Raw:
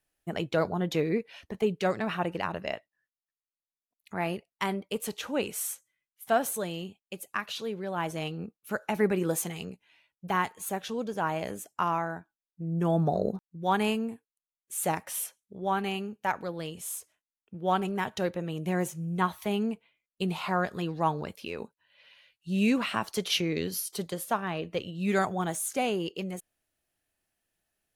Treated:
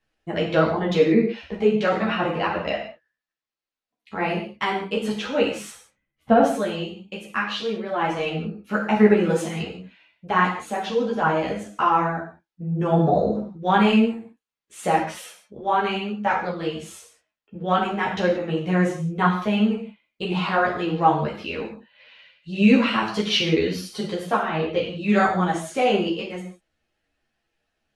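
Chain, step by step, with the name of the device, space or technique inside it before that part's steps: 5.70–6.43 s: tilt EQ -4.5 dB/octave; gated-style reverb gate 210 ms falling, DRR -0.5 dB; string-machine ensemble chorus (three-phase chorus; low-pass 4.2 kHz 12 dB/octave); trim +8.5 dB

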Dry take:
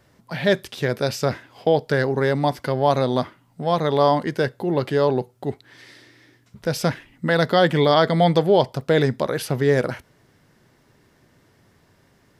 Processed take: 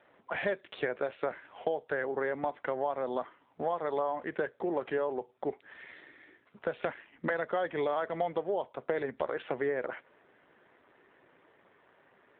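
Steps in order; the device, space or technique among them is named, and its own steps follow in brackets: voicemail (band-pass 430–2600 Hz; compression 6:1, threshold -31 dBFS, peak gain reduction 17 dB; trim +2.5 dB; AMR-NB 7.4 kbps 8 kHz)

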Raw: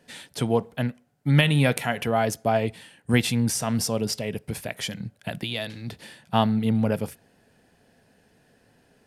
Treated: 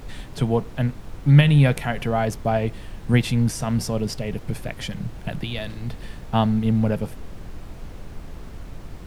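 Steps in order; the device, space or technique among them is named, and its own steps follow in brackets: car interior (peaking EQ 140 Hz +7 dB 0.81 oct; treble shelf 4.6 kHz -7 dB; brown noise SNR 11 dB)

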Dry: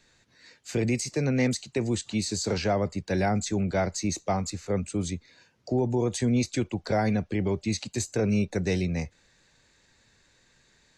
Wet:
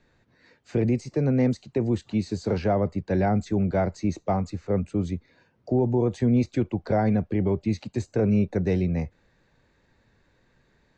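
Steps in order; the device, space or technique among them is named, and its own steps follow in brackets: through cloth (low-pass 6.4 kHz 12 dB/octave; treble shelf 2.3 kHz -17.5 dB); 0.85–1.87 s: dynamic bell 2.2 kHz, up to -4 dB, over -51 dBFS, Q 1.3; trim +3.5 dB

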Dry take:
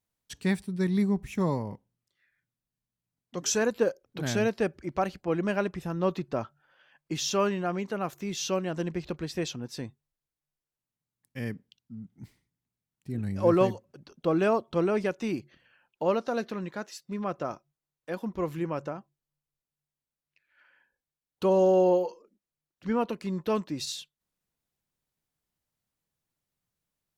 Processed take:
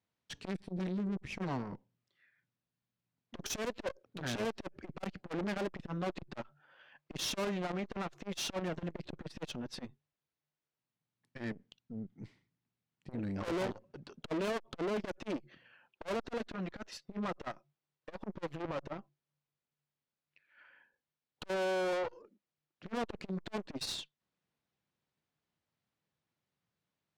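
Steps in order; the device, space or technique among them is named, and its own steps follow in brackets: valve radio (band-pass 100–4100 Hz; valve stage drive 37 dB, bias 0.75; transformer saturation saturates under 280 Hz); trim +6 dB

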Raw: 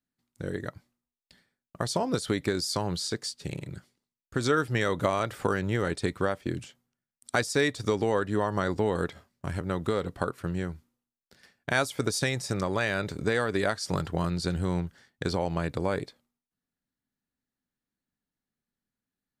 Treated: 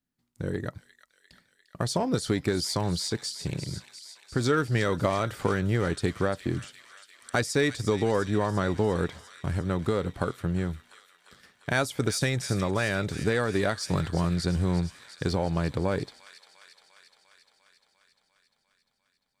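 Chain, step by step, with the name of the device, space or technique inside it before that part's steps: bass shelf 260 Hz +5 dB; feedback echo behind a high-pass 349 ms, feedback 71%, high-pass 2.4 kHz, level -10 dB; parallel distortion (in parallel at -9 dB: hard clipper -27 dBFS, distortion -6 dB); on the sum: trim -2 dB

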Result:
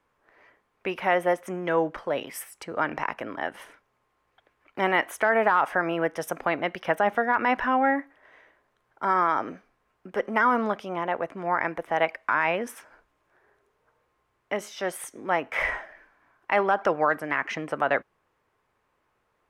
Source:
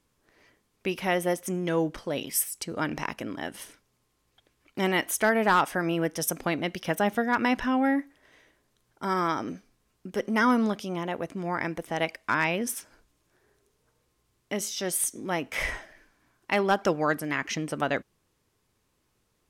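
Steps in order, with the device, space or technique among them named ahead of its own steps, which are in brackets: DJ mixer with the lows and highs turned down (three-band isolator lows -14 dB, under 510 Hz, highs -20 dB, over 2.2 kHz; peak limiter -19 dBFS, peak gain reduction 7.5 dB); trim +8 dB

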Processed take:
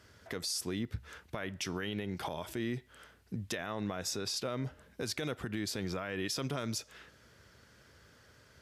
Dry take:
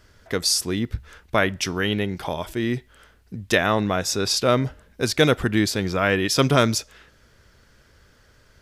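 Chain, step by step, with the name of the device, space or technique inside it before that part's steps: high-pass 62 Hz; podcast mastering chain (high-pass 62 Hz; compression 3:1, threshold -29 dBFS, peak gain reduction 13 dB; peak limiter -22.5 dBFS, peak gain reduction 9 dB; trim -3 dB; MP3 112 kbps 32 kHz)

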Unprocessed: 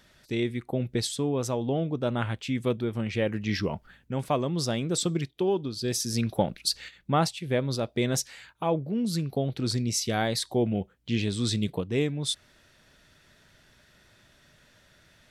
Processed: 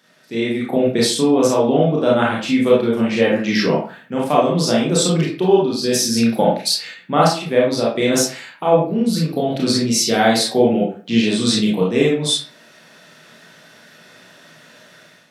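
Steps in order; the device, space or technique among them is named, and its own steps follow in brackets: far laptop microphone (reverberation RT60 0.40 s, pre-delay 26 ms, DRR -4.5 dB; high-pass 170 Hz 24 dB/octave; level rider gain up to 9.5 dB)

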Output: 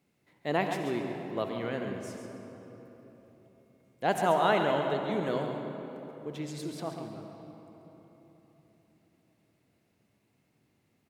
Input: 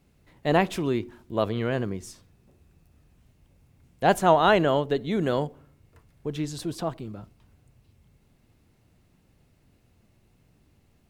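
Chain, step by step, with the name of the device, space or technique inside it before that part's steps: PA in a hall (high-pass 160 Hz 12 dB/octave; peaking EQ 2.1 kHz +4 dB 0.26 oct; delay 138 ms -9 dB; reverberation RT60 3.9 s, pre-delay 55 ms, DRR 5 dB); trim -7.5 dB

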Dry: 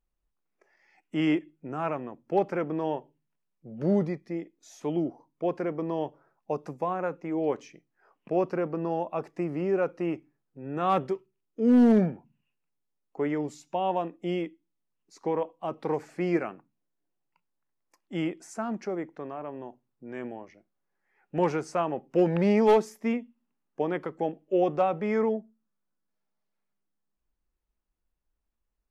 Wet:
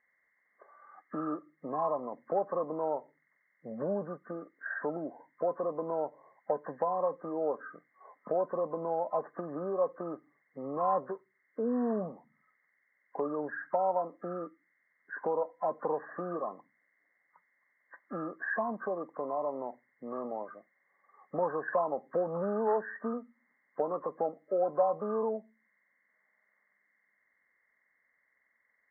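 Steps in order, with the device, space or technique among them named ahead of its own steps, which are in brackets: hearing aid with frequency lowering (knee-point frequency compression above 1 kHz 4:1; compression 2.5:1, threshold -40 dBFS, peak gain reduction 15.5 dB; cabinet simulation 310–5500 Hz, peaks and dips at 350 Hz -10 dB, 570 Hz +4 dB, 1.3 kHz -5 dB, 1.9 kHz +5 dB, 2.8 kHz +8 dB); trim +8.5 dB

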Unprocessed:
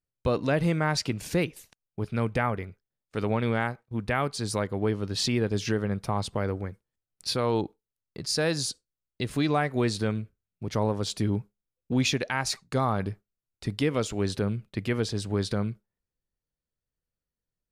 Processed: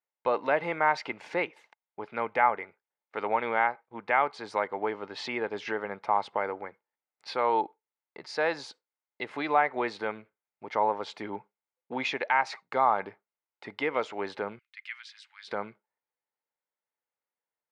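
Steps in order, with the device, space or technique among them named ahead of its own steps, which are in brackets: tin-can telephone (band-pass 610–2000 Hz; small resonant body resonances 870/2100 Hz, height 9 dB, ringing for 25 ms); 14.59–15.48 s: Bessel high-pass 2.7 kHz, order 6; trim +3.5 dB

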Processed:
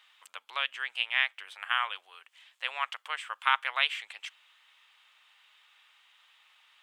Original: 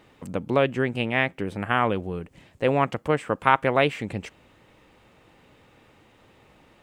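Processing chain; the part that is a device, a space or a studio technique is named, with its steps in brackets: headphones lying on a table (high-pass 1.1 kHz 24 dB/octave; peaking EQ 3.3 kHz +9.5 dB 0.58 oct); trim -4 dB

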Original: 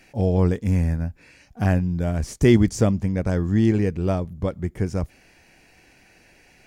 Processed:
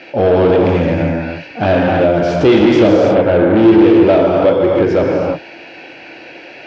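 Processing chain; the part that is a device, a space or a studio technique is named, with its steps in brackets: 3.09–3.57 s: elliptic low-pass 2.1 kHz; gated-style reverb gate 360 ms flat, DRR 0 dB; overdrive pedal into a guitar cabinet (overdrive pedal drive 31 dB, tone 3.6 kHz, clips at -1 dBFS; cabinet simulation 81–4000 Hz, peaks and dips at 200 Hz -4 dB, 320 Hz +7 dB, 550 Hz +6 dB, 1.1 kHz -5 dB, 1.9 kHz -7 dB); trim -3 dB

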